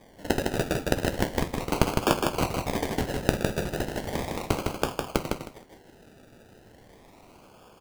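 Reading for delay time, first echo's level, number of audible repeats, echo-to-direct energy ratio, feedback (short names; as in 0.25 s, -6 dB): 0.157 s, -4.0 dB, 3, -4.0 dB, 20%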